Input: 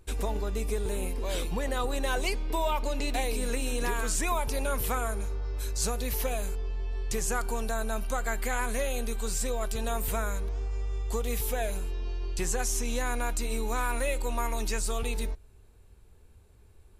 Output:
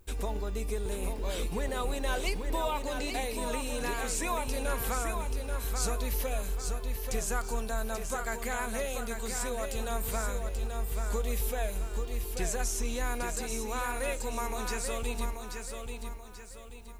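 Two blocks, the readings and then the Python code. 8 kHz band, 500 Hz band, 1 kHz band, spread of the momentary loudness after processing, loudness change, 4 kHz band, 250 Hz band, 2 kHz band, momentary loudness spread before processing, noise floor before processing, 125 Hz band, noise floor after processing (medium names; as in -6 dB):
-2.0 dB, -2.0 dB, -2.0 dB, 4 LU, -2.5 dB, -2.0 dB, -2.0 dB, -2.0 dB, 5 LU, -55 dBFS, -2.5 dB, -44 dBFS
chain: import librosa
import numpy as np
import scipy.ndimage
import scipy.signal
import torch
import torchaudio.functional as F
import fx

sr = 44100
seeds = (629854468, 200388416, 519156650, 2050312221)

y = fx.dmg_noise_colour(x, sr, seeds[0], colour='violet', level_db=-69.0)
y = fx.echo_feedback(y, sr, ms=834, feedback_pct=39, wet_db=-6.0)
y = F.gain(torch.from_numpy(y), -3.0).numpy()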